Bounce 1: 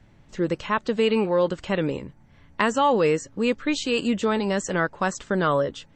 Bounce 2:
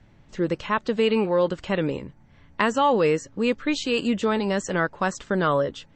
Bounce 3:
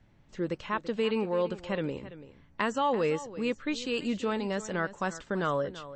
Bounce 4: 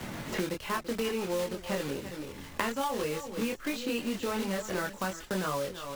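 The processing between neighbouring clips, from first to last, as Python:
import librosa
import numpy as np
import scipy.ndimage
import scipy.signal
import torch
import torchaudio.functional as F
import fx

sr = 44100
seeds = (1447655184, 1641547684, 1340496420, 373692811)

y1 = scipy.signal.sosfilt(scipy.signal.butter(2, 7400.0, 'lowpass', fs=sr, output='sos'), x)
y2 = y1 + 10.0 ** (-15.0 / 20.0) * np.pad(y1, (int(335 * sr / 1000.0), 0))[:len(y1)]
y2 = y2 * librosa.db_to_amplitude(-7.5)
y3 = fx.block_float(y2, sr, bits=3)
y3 = fx.chorus_voices(y3, sr, voices=6, hz=0.47, base_ms=24, depth_ms=2.8, mix_pct=45)
y3 = fx.band_squash(y3, sr, depth_pct=100)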